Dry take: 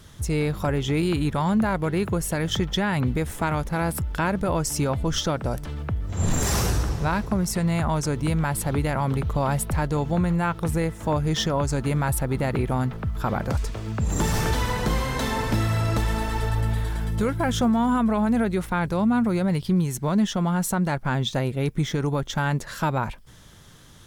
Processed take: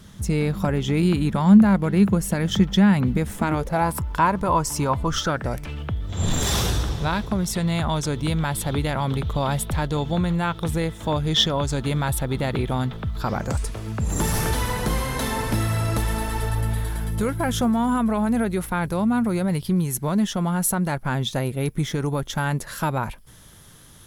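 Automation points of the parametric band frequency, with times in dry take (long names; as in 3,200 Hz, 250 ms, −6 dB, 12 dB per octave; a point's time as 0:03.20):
parametric band +13 dB 0.36 octaves
0:03.39 200 Hz
0:03.87 1,000 Hz
0:04.98 1,000 Hz
0:05.94 3,500 Hz
0:13.09 3,500 Hz
0:13.73 11,000 Hz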